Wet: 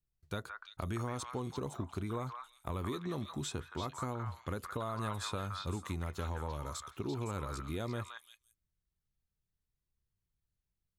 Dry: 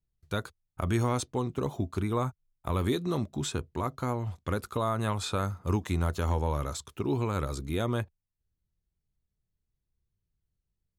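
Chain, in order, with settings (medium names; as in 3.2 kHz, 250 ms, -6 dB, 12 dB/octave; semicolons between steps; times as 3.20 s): compression, threshold -29 dBFS, peak gain reduction 7 dB; repeats whose band climbs or falls 170 ms, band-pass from 1.4 kHz, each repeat 1.4 oct, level 0 dB; trim -5 dB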